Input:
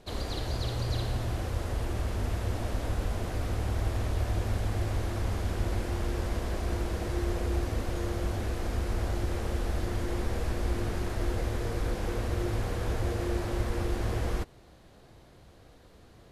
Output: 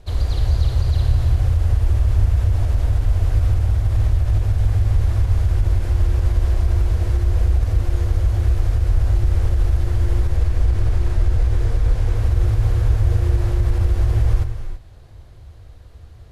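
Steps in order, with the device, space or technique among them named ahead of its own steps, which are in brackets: car stereo with a boomy subwoofer (resonant low shelf 130 Hz +13 dB, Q 1.5; limiter -11.5 dBFS, peak gain reduction 7.5 dB); 10.36–12.16 Bessel low-pass 11000 Hz; non-linear reverb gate 0.36 s rising, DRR 8.5 dB; gain +2 dB

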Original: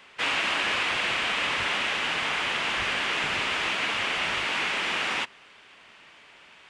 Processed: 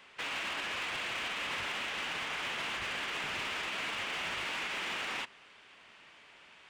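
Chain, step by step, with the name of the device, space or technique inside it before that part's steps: limiter into clipper (limiter -22 dBFS, peak gain reduction 7.5 dB; hard clip -27 dBFS, distortion -16 dB); gain -5 dB

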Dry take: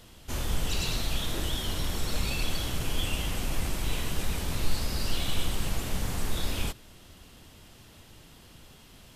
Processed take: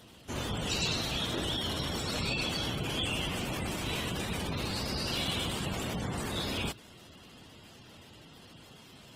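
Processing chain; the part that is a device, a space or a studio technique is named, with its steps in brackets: noise-suppressed video call (HPF 110 Hz 12 dB/oct; spectral gate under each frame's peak -20 dB strong; gain +2 dB; Opus 20 kbps 48000 Hz)

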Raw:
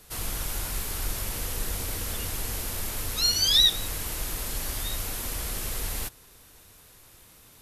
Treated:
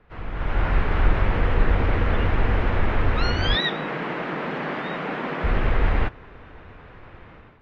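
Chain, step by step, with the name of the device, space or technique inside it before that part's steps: 3.55–5.44 elliptic high-pass 150 Hz; action camera in a waterproof case (LPF 2100 Hz 24 dB/oct; AGC gain up to 14 dB; AAC 48 kbps 44100 Hz)

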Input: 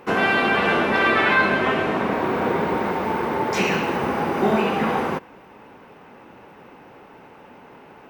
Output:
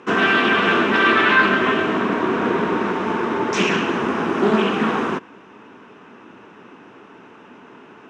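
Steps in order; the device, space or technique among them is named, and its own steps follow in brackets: full-range speaker at full volume (Doppler distortion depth 0.31 ms; speaker cabinet 150–7600 Hz, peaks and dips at 150 Hz -6 dB, 540 Hz -10 dB, 800 Hz -10 dB, 2100 Hz -6 dB, 4500 Hz -8 dB); gain +5.5 dB

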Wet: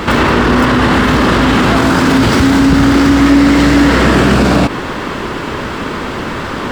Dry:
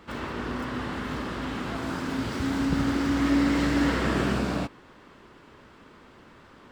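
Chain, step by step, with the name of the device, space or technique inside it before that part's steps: loud club master (compressor 2:1, threshold -29 dBFS, peak gain reduction 6 dB; hard clip -22.5 dBFS, distortion -25 dB; maximiser +33 dB); gain -1 dB

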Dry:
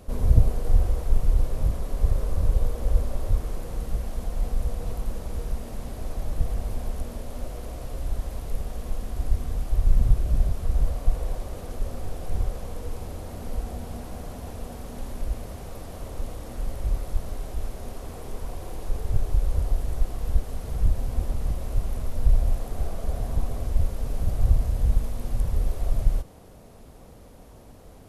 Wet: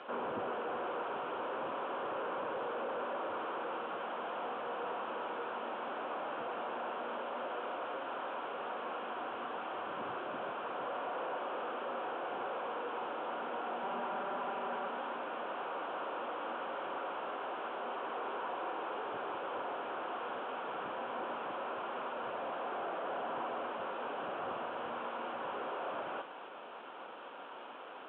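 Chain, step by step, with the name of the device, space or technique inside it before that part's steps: 13.83–14.88 comb 5.1 ms, depth 93%; digital answering machine (BPF 340–3300 Hz; delta modulation 16 kbps, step -52 dBFS; speaker cabinet 430–4000 Hz, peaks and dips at 450 Hz -5 dB, 640 Hz -5 dB, 970 Hz +4 dB, 1400 Hz +7 dB, 2000 Hz -10 dB, 3200 Hz +4 dB); gain +8 dB

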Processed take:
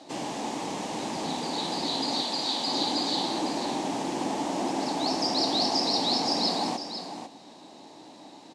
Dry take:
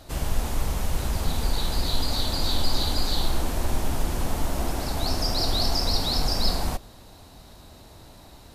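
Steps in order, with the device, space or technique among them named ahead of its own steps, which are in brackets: television speaker (speaker cabinet 190–7700 Hz, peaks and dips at 300 Hz +8 dB, 840 Hz +7 dB, 1400 Hz -9 dB); 2.22–2.68 low shelf 490 Hz -9 dB; echo 0.498 s -9.5 dB

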